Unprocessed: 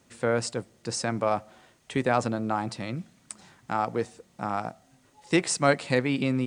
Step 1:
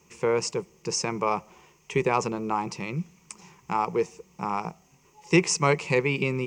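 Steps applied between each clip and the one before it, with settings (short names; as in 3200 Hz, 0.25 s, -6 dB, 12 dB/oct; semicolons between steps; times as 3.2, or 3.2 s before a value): ripple EQ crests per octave 0.77, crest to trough 14 dB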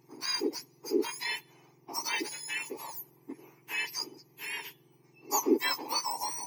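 spectrum mirrored in octaves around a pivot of 1500 Hz; gain -4.5 dB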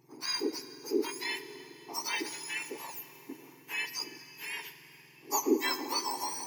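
plate-style reverb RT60 4.1 s, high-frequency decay 0.9×, DRR 10.5 dB; gain -1.5 dB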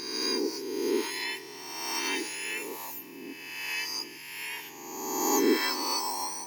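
spectral swells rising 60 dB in 1.57 s; gain -1.5 dB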